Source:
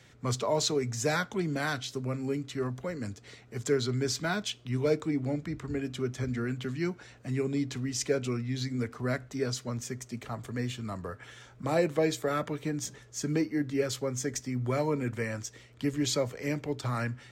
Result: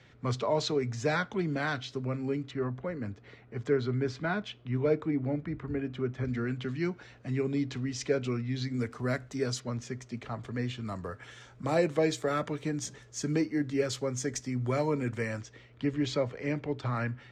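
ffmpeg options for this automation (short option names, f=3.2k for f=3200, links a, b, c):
-af "asetnsamples=n=441:p=0,asendcmd='2.51 lowpass f 2300;6.25 lowpass f 4600;8.74 lowpass f 10000;9.6 lowpass f 4500;10.86 lowpass f 8400;15.41 lowpass f 3300',lowpass=3.9k"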